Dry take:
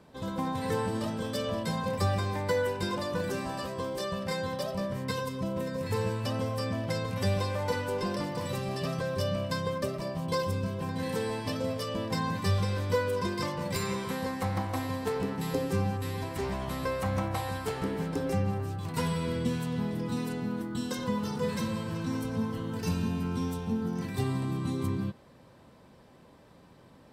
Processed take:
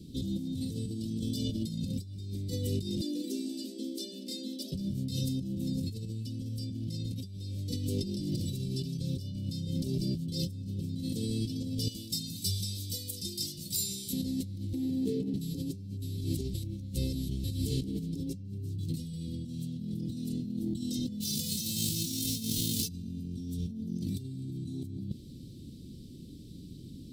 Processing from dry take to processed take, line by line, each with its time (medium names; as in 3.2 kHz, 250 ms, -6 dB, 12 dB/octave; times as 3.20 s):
3.01–4.72 s: rippled Chebyshev high-pass 210 Hz, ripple 9 dB
11.88–14.13 s: pre-emphasis filter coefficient 0.9
14.73–15.34 s: three-band isolator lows -22 dB, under 160 Hz, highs -13 dB, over 2.1 kHz
16.54–17.44 s: reverse
21.20–22.87 s: formants flattened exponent 0.3
whole clip: elliptic band-stop 320–3700 Hz, stop band 80 dB; bass shelf 180 Hz +4.5 dB; compressor with a negative ratio -39 dBFS, ratio -1; trim +4 dB